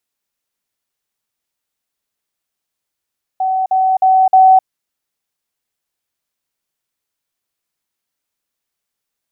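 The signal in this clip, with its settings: level ladder 756 Hz -13 dBFS, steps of 3 dB, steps 4, 0.26 s 0.05 s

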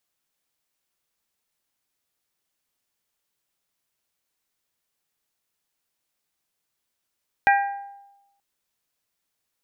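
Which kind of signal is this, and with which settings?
glass hit bell, length 0.93 s, lowest mode 800 Hz, modes 4, decay 0.98 s, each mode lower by 3.5 dB, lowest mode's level -13.5 dB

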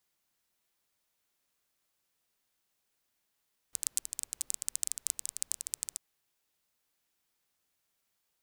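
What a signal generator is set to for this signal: rain from filtered ticks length 2.24 s, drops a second 16, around 8 kHz, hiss -29.5 dB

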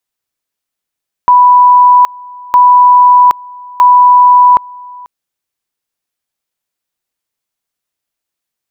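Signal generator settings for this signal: two-level tone 988 Hz -1.5 dBFS, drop 25 dB, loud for 0.77 s, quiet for 0.49 s, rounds 3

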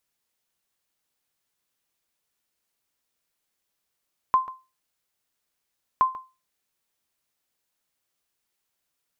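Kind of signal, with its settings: sonar ping 1.04 kHz, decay 0.28 s, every 1.67 s, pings 2, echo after 0.14 s, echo -16.5 dB -11.5 dBFS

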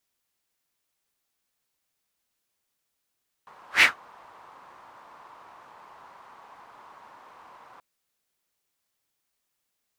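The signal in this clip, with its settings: whoosh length 4.33 s, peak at 0.35 s, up 0.13 s, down 0.15 s, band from 1 kHz, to 2.3 kHz, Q 3.6, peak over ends 35 dB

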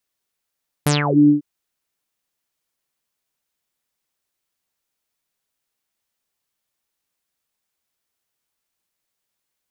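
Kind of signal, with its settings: synth note saw D3 24 dB/octave, low-pass 300 Hz, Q 11, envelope 5.5 oct, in 0.29 s, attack 4.8 ms, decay 0.16 s, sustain -7.5 dB, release 0.12 s, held 0.43 s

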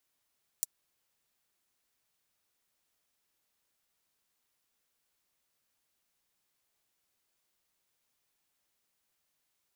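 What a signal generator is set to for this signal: closed hi-hat, high-pass 7 kHz, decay 0.03 s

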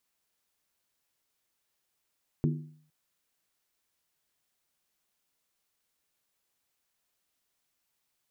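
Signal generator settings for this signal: skin hit length 0.46 s, lowest mode 153 Hz, decay 0.57 s, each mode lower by 4.5 dB, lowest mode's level -22 dB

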